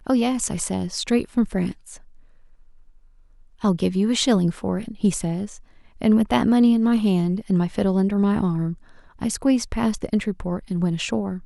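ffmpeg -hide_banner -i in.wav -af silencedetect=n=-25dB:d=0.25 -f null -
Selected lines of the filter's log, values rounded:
silence_start: 1.71
silence_end: 3.64 | silence_duration: 1.93
silence_start: 5.46
silence_end: 6.02 | silence_duration: 0.56
silence_start: 8.73
silence_end: 9.22 | silence_duration: 0.49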